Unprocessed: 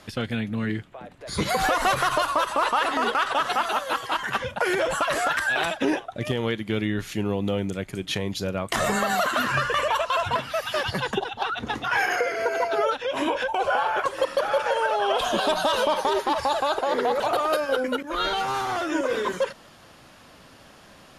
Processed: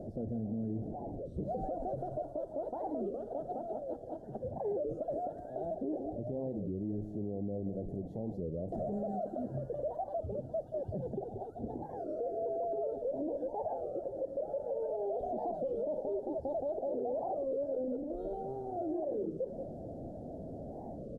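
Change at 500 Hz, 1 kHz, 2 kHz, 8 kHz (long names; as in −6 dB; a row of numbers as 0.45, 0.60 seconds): −9.0 dB, −18.5 dB, below −40 dB, below −40 dB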